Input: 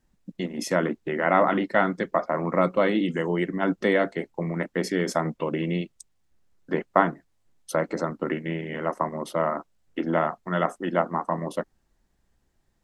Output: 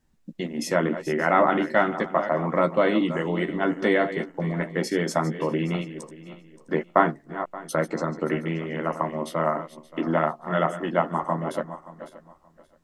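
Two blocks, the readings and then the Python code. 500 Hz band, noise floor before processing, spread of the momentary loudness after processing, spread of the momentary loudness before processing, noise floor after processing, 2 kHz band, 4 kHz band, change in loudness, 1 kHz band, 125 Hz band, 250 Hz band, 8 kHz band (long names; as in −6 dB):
+1.0 dB, −70 dBFS, 14 LU, 9 LU, −58 dBFS, +1.0 dB, +1.0 dB, +1.0 dB, +1.5 dB, +1.5 dB, +1.0 dB, +1.0 dB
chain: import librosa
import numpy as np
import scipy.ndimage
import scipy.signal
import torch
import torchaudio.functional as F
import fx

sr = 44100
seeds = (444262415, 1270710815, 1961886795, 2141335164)

y = fx.reverse_delay_fb(x, sr, ms=288, feedback_pct=45, wet_db=-12)
y = fx.doubler(y, sr, ms=13.0, db=-7)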